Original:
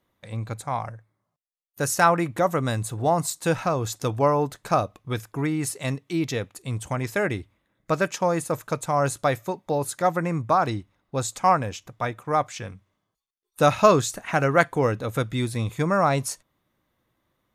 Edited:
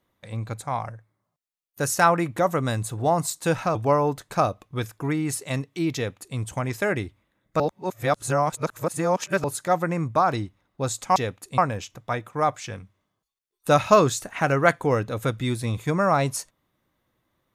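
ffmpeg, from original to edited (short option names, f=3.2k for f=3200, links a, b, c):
-filter_complex "[0:a]asplit=6[a][b][c][d][e][f];[a]atrim=end=3.752[g];[b]atrim=start=4.088:end=7.942[h];[c]atrim=start=7.938:end=9.782,asetpts=PTS-STARTPTS,areverse[i];[d]atrim=start=9.778:end=11.502[j];[e]atrim=start=6.288:end=6.712[k];[f]atrim=start=11.498[l];[g][h]acrossfade=d=0.004:c1=hsin:c2=hsin[m];[m][i]acrossfade=d=0.004:c1=hsin:c2=hsin[n];[n][j]acrossfade=d=0.004:c1=hsin:c2=hsin[o];[o][k]acrossfade=d=0.004:c1=hsin:c2=hsin[p];[p][l]acrossfade=d=0.004:c1=hsin:c2=hsin"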